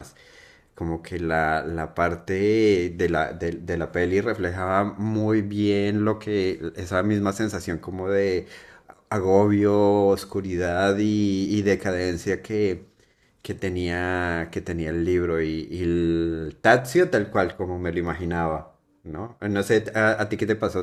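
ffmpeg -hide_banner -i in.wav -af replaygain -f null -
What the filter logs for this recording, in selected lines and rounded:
track_gain = +3.7 dB
track_peak = 0.527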